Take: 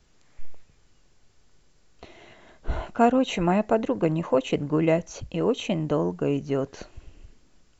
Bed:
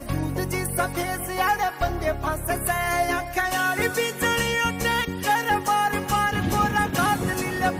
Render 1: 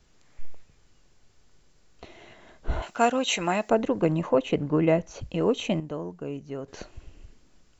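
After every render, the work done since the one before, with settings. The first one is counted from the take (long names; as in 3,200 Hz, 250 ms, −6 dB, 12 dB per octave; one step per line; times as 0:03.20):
0:02.82–0:03.70: spectral tilt +3.5 dB per octave
0:04.29–0:05.21: low-pass filter 3,600 Hz 6 dB per octave
0:05.80–0:06.68: clip gain −9.5 dB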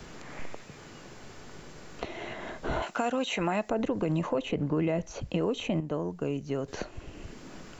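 brickwall limiter −19 dBFS, peak gain reduction 11 dB
multiband upward and downward compressor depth 70%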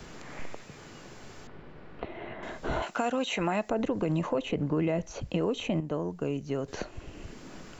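0:01.47–0:02.43: high-frequency loss of the air 410 metres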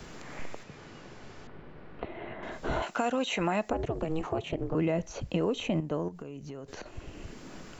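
0:00.63–0:02.52: high-frequency loss of the air 86 metres
0:03.73–0:04.75: ring modulation 160 Hz
0:06.08–0:06.86: downward compressor, threshold −38 dBFS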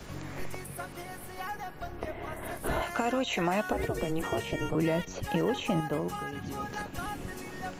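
mix in bed −16 dB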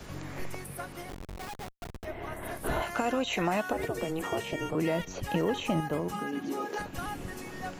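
0:01.09–0:02.05: comparator with hysteresis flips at −37.5 dBFS
0:03.57–0:05.00: low-shelf EQ 96 Hz −11 dB
0:06.12–0:06.78: high-pass with resonance 200 Hz → 420 Hz, resonance Q 3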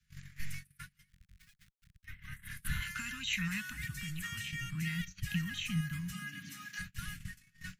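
noise gate −37 dBFS, range −29 dB
elliptic band-stop filter 170–1,700 Hz, stop band 70 dB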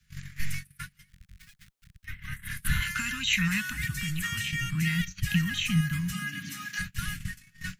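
level +9 dB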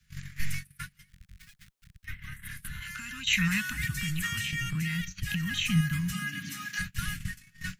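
0:02.18–0:03.27: downward compressor, threshold −36 dBFS
0:04.32–0:05.54: downward compressor, threshold −27 dBFS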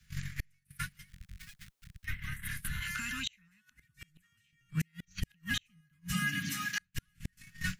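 gate with flip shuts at −23 dBFS, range −42 dB
in parallel at −9 dB: soft clipping −30.5 dBFS, distortion −14 dB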